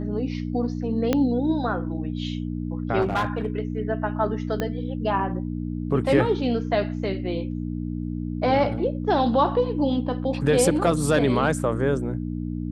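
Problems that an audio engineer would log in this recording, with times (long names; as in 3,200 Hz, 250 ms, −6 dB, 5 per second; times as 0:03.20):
mains hum 60 Hz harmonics 5 −29 dBFS
0:01.13: click −8 dBFS
0:03.01–0:03.46: clipping −19 dBFS
0:04.60: click −13 dBFS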